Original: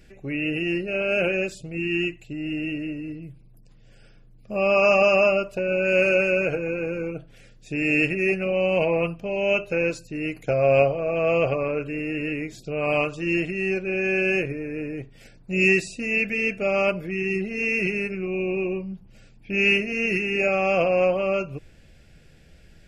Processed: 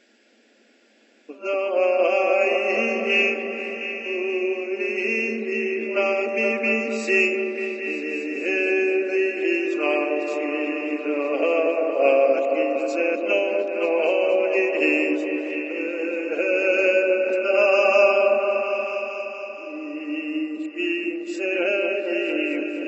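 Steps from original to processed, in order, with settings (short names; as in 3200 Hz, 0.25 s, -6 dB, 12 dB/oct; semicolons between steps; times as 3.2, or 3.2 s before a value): whole clip reversed; repeats that get brighter 0.235 s, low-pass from 750 Hz, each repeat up 1 oct, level -3 dB; FFT band-pass 210–7900 Hz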